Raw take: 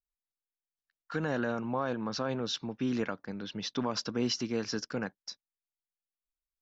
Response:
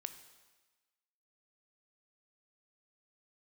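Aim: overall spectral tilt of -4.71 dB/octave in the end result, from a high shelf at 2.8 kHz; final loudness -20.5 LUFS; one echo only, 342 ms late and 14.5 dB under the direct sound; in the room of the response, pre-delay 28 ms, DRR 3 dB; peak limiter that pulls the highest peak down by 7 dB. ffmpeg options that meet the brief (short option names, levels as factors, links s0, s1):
-filter_complex "[0:a]highshelf=f=2800:g=-4,alimiter=level_in=1.33:limit=0.0631:level=0:latency=1,volume=0.75,aecho=1:1:342:0.188,asplit=2[s0][s1];[1:a]atrim=start_sample=2205,adelay=28[s2];[s1][s2]afir=irnorm=-1:irlink=0,volume=1[s3];[s0][s3]amix=inputs=2:normalize=0,volume=5.96"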